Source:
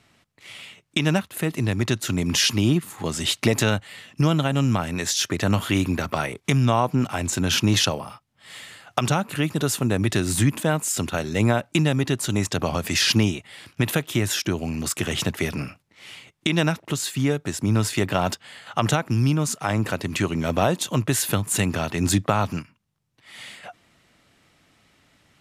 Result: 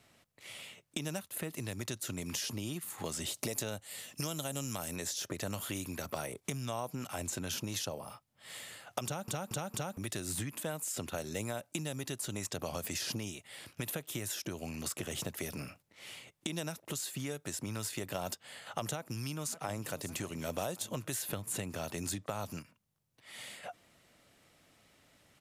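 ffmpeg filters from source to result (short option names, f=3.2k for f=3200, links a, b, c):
-filter_complex "[0:a]asettb=1/sr,asplit=3[a][b][c];[a]atrim=end=3.344[d];[b]atrim=start=3.34:end=4.96,asetpts=PTS-STARTPTS,afade=t=in:d=0.004:c=qsin,afade=t=out:st=1.616:d=0.004:c=qsin,bass=f=250:g=-2,treble=f=4k:g=11[e];[c]atrim=start=4.956[f];[d][e]acrossfade=d=0.004:c1=hsin:c2=qsin[g];[g][f]acrossfade=d=0.004:c1=qsin:c2=hsin,asplit=2[h][i];[i]afade=t=in:st=18.96:d=0.01,afade=t=out:st=19.92:d=0.01,aecho=0:1:560|1120|1680|2240|2800:0.125893|0.0755355|0.0453213|0.0271928|0.0163157[j];[h][j]amix=inputs=2:normalize=0,asplit=5[k][l][m][n][o];[k]atrim=end=9.282[p];[l]atrim=start=9.048:end=9.282[q];[m]atrim=start=9.048:end=9.282[r];[n]atrim=start=9.048:end=9.282[s];[o]atrim=start=9.968[t];[p][q]acrossfade=d=0.004:c1=hsin:c2=hsin[u];[u][r]acrossfade=d=0.004:c1=hsin:c2=hsin[v];[v][s]acrossfade=d=0.004:c1=hsin:c2=hsin[w];[w][t]acrossfade=d=0.004:c1=hsin:c2=hsin,highshelf=f=8.6k:g=11,acrossover=split=1000|4800[x][y][z];[x]acompressor=threshold=-33dB:ratio=4[aa];[y]acompressor=threshold=-40dB:ratio=4[ab];[z]acompressor=threshold=-33dB:ratio=4[ac];[aa][ab][ac]amix=inputs=3:normalize=0,equalizer=f=560:t=o:w=0.79:g=5.5,volume=-7dB"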